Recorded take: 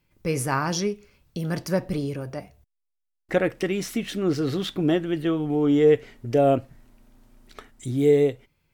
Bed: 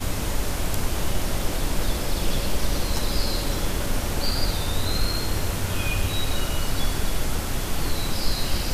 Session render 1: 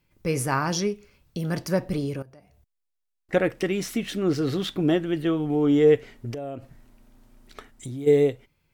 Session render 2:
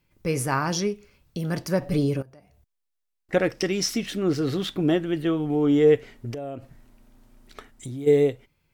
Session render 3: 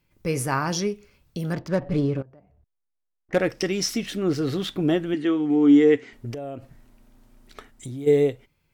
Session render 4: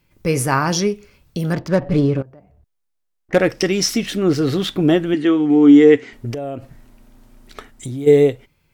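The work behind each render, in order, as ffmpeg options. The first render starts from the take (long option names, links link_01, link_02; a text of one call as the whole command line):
ffmpeg -i in.wav -filter_complex "[0:a]asettb=1/sr,asplit=3[link_01][link_02][link_03];[link_01]atrim=end=2.224[link_04];[link_02]atrim=start=2.22:end=3.33,asetpts=PTS-STARTPTS,afade=type=in:duration=0.004:curve=qsin,afade=type=out:start_time=1.106:duration=0.004:curve=qsin,acompressor=threshold=-56dB:ratio=2.5:attack=3.2:release=140:knee=1:detection=peak[link_05];[link_03]atrim=start=3.326[link_06];[link_04][link_05]acrossfade=duration=0.004:curve1=hsin:curve2=qsin[link_07];[link_07][link_06]acrossfade=duration=0.004:curve1=qsin:curve2=hsin,asplit=3[link_08][link_09][link_10];[link_08]afade=type=out:start_time=6.31:duration=0.02[link_11];[link_09]acompressor=threshold=-30dB:ratio=16:attack=3.2:release=140:knee=1:detection=peak,afade=type=in:start_time=6.31:duration=0.02,afade=type=out:start_time=8.06:duration=0.02[link_12];[link_10]afade=type=in:start_time=8.06:duration=0.02[link_13];[link_11][link_12][link_13]amix=inputs=3:normalize=0" out.wav
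ffmpeg -i in.wav -filter_complex "[0:a]asettb=1/sr,asplit=3[link_01][link_02][link_03];[link_01]atrim=end=1.814[link_04];[link_02]atrim=start=1.81:end=2.21,asetpts=PTS-STARTPTS,afade=type=in:duration=0.004:curve=qsin,afade=type=out:start_time=0.396:duration=0.004:curve=qsin,aecho=1:1:7:0.91,atrim=end_sample=17640[link_05];[link_03]atrim=start=2.206[link_06];[link_04][link_05]acrossfade=duration=0.004:curve1=hsin:curve2=qsin[link_07];[link_07][link_06]acrossfade=duration=0.004:curve1=qsin:curve2=hsin,asettb=1/sr,asplit=3[link_08][link_09][link_10];[link_08]atrim=end=3.394[link_11];[link_09]atrim=start=3.39:end=4.06,asetpts=PTS-STARTPTS,afade=type=in:duration=0.004:curve=qsin,afade=type=out:start_time=0.666:duration=0.004:curve=qsin,equalizer=frequency=5300:width=2.7:gain=14[link_12];[link_10]atrim=start=4.056[link_13];[link_11][link_12]acrossfade=duration=0.004:curve1=hsin:curve2=qsin[link_14];[link_14][link_13]acrossfade=duration=0.004:curve1=qsin:curve2=hsin" out.wav
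ffmpeg -i in.wav -filter_complex "[0:a]asettb=1/sr,asplit=3[link_01][link_02][link_03];[link_01]atrim=end=1.534[link_04];[link_02]atrim=start=1.53:end=3.38,asetpts=PTS-STARTPTS,afade=type=in:duration=0.004:curve=qsin,afade=type=out:start_time=1.846:duration=0.004:curve=qsin,adynamicsmooth=sensitivity=5:basefreq=1400[link_05];[link_03]atrim=start=3.376[link_06];[link_04][link_05]acrossfade=duration=0.004:curve1=hsin:curve2=qsin[link_07];[link_07][link_06]acrossfade=duration=0.004:curve1=qsin:curve2=hsin,asettb=1/sr,asplit=3[link_08][link_09][link_10];[link_08]atrim=end=5.144[link_11];[link_09]atrim=start=5.14:end=6.13,asetpts=PTS-STARTPTS,afade=type=in:duration=0.004:curve=qsin,afade=type=out:start_time=0.986:duration=0.004:curve=qsin,highpass=140,equalizer=frequency=170:width_type=q:width=4:gain=-10,equalizer=frequency=280:width_type=q:width=4:gain=8,equalizer=frequency=590:width_type=q:width=4:gain=-8,equalizer=frequency=2000:width_type=q:width=4:gain=5,equalizer=frequency=6600:width_type=q:width=4:gain=3,lowpass=frequency=8100:width=0.5412,lowpass=frequency=8100:width=1.3066[link_12];[link_10]atrim=start=6.126[link_13];[link_11][link_12]acrossfade=duration=0.004:curve1=hsin:curve2=qsin[link_14];[link_14][link_13]acrossfade=duration=0.004:curve1=qsin:curve2=hsin" out.wav
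ffmpeg -i in.wav -af "volume=7dB,alimiter=limit=-2dB:level=0:latency=1" out.wav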